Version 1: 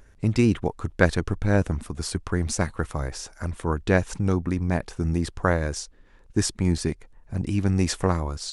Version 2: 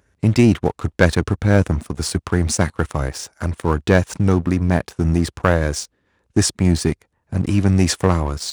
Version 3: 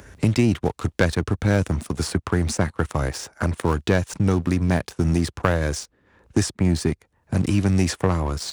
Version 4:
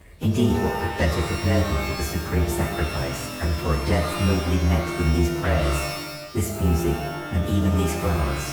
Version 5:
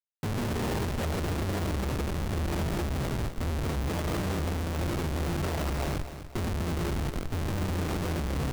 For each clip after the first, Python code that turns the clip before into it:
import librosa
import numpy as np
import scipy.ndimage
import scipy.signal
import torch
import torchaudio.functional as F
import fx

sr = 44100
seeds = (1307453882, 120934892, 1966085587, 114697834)

y1 = scipy.signal.sosfilt(scipy.signal.butter(4, 61.0, 'highpass', fs=sr, output='sos'), x)
y1 = fx.leveller(y1, sr, passes=2)
y2 = fx.band_squash(y1, sr, depth_pct=70)
y2 = F.gain(torch.from_numpy(y2), -4.0).numpy()
y3 = fx.partial_stretch(y2, sr, pct=110)
y3 = fx.rev_shimmer(y3, sr, seeds[0], rt60_s=1.1, semitones=12, shimmer_db=-2, drr_db=3.5)
y3 = F.gain(torch.from_numpy(y3), -1.5).numpy()
y4 = fx.schmitt(y3, sr, flips_db=-23.5)
y4 = fx.echo_feedback(y4, sr, ms=251, feedback_pct=40, wet_db=-11.0)
y4 = F.gain(torch.from_numpy(y4), -7.0).numpy()